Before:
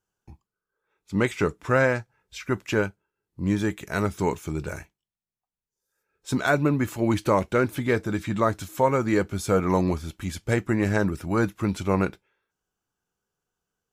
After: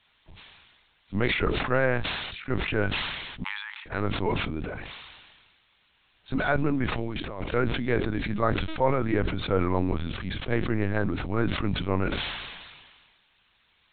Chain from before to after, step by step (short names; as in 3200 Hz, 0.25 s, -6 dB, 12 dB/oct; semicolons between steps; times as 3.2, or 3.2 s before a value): 6.92–7.55 negative-ratio compressor -30 dBFS, ratio -1; added noise blue -48 dBFS; LPC vocoder at 8 kHz pitch kept; 3.44–3.86 brick-wall FIR high-pass 810 Hz; sustainer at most 35 dB/s; gain -3.5 dB